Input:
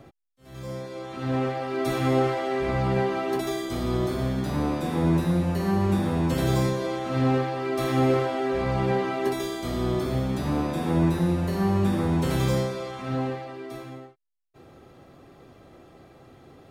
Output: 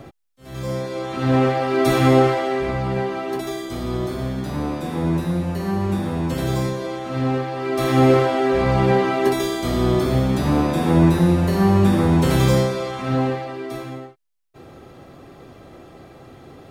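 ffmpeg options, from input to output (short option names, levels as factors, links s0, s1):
-af "volume=5.96,afade=t=out:st=2.03:d=0.77:silence=0.398107,afade=t=in:st=7.45:d=0.61:silence=0.473151"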